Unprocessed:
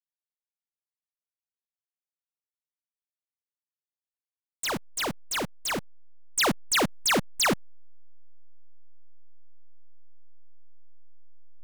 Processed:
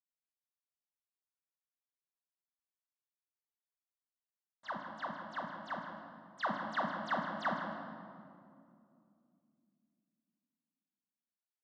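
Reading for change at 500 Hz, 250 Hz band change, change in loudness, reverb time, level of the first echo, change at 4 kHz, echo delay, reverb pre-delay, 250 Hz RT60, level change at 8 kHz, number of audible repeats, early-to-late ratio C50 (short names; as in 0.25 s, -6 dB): -11.0 dB, -11.5 dB, -12.5 dB, 2.5 s, -10.5 dB, -22.0 dB, 0.158 s, 5 ms, 3.7 s, under -35 dB, 1, 3.5 dB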